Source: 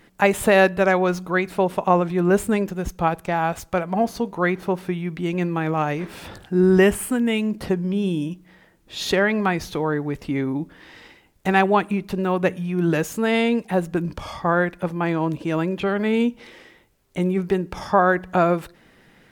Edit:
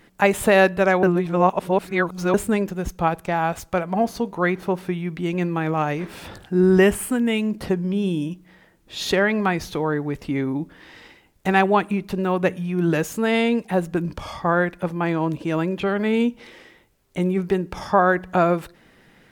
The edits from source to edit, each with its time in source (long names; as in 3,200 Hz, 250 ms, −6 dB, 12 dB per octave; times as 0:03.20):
0:01.03–0:02.34: reverse